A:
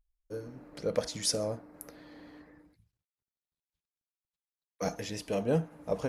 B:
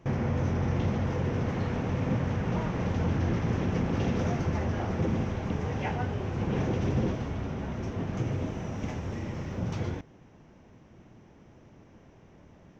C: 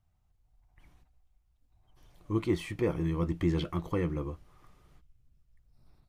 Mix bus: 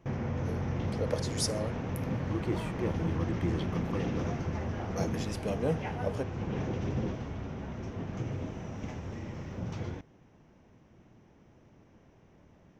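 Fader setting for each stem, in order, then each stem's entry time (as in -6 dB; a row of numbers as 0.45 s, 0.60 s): -2.5 dB, -5.0 dB, -5.0 dB; 0.15 s, 0.00 s, 0.00 s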